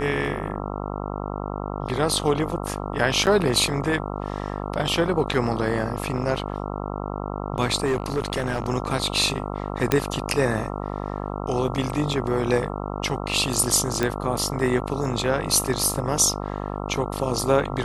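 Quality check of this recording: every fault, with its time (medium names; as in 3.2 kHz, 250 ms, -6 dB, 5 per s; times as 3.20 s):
buzz 50 Hz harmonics 27 -30 dBFS
3.26–3.27 s: dropout 8.7 ms
7.85–8.66 s: clipped -18.5 dBFS
9.92 s: pop -4 dBFS
14.03 s: pop -9 dBFS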